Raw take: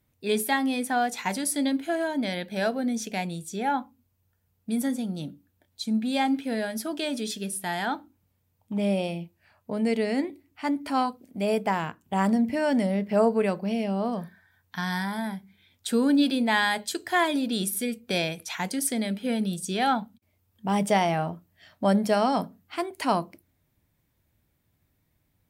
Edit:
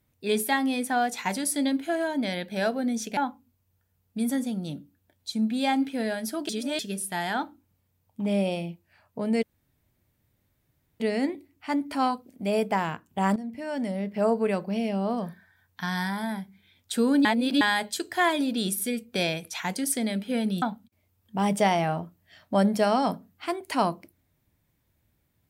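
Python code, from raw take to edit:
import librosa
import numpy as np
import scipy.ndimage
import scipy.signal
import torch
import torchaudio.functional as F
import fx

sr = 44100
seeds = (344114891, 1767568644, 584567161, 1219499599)

y = fx.edit(x, sr, fx.cut(start_s=3.17, length_s=0.52),
    fx.reverse_span(start_s=7.01, length_s=0.3),
    fx.insert_room_tone(at_s=9.95, length_s=1.57),
    fx.fade_in_from(start_s=12.31, length_s=1.81, curve='qsin', floor_db=-15.0),
    fx.reverse_span(start_s=16.2, length_s=0.36),
    fx.cut(start_s=19.57, length_s=0.35), tone=tone)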